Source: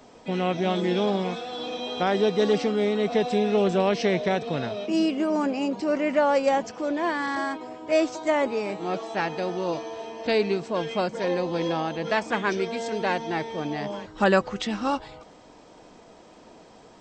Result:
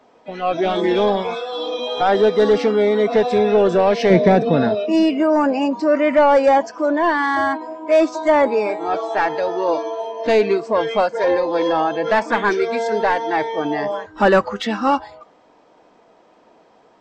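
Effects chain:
mid-hump overdrive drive 17 dB, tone 1,200 Hz, clips at −7.5 dBFS
0:04.10–0:04.75: parametric band 200 Hz +10 dB 1.7 octaves
noise reduction from a noise print of the clip's start 13 dB
level +4.5 dB

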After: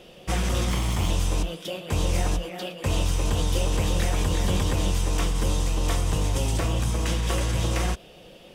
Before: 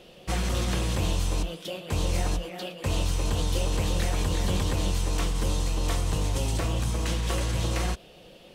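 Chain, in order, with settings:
0:00.69–0:01.10: lower of the sound and its delayed copy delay 0.92 ms
notch filter 4,200 Hz, Q 11
level +2.5 dB

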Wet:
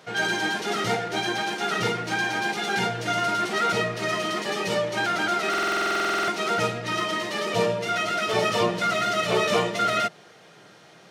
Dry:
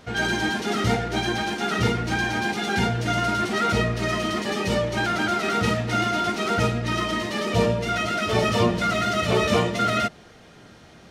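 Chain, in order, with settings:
high-pass filter 150 Hz 24 dB per octave
parametric band 240 Hz −11.5 dB 0.57 octaves
buffer that repeats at 0:05.49, samples 2,048, times 16

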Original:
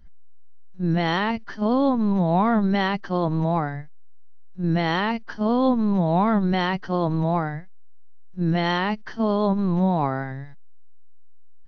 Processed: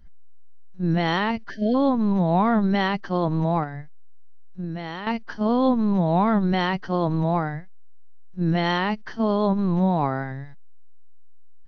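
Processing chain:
0:01.50–0:01.75: time-frequency box erased 720–1,500 Hz
0:03.63–0:05.07: downward compressor 6 to 1, threshold −28 dBFS, peak gain reduction 10.5 dB

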